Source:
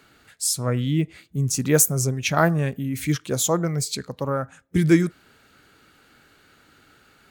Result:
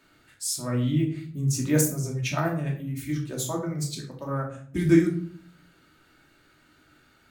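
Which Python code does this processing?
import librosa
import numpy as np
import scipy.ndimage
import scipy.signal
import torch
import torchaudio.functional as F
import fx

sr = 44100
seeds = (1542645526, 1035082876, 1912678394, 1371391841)

y = fx.harmonic_tremolo(x, sr, hz=9.7, depth_pct=70, crossover_hz=410.0, at=(1.81, 4.26))
y = fx.room_shoebox(y, sr, seeds[0], volume_m3=560.0, walls='furnished', distance_m=2.7)
y = y * librosa.db_to_amplitude(-8.5)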